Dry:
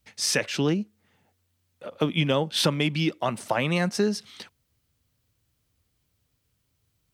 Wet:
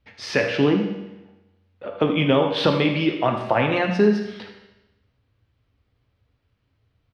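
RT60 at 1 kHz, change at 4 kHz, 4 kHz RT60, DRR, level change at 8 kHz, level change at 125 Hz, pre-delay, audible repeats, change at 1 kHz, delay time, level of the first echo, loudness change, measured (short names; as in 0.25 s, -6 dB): 1.0 s, -0.5 dB, 1.0 s, 2.5 dB, under -10 dB, +2.0 dB, 10 ms, 1, +6.5 dB, 77 ms, -11.5 dB, +4.5 dB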